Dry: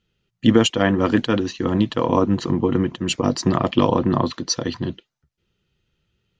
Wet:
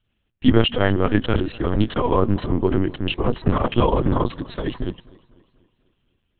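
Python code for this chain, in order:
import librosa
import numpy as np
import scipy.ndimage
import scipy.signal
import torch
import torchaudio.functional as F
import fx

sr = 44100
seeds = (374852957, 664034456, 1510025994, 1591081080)

y = fx.lpc_vocoder(x, sr, seeds[0], excitation='pitch_kept', order=8)
y = fx.echo_warbled(y, sr, ms=246, feedback_pct=50, rate_hz=2.8, cents=108, wet_db=-23.0)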